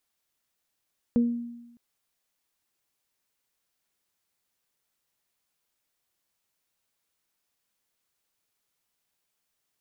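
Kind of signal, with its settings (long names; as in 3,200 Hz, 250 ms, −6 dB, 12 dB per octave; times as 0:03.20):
harmonic partials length 0.61 s, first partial 237 Hz, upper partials −10 dB, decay 1.00 s, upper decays 0.33 s, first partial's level −17 dB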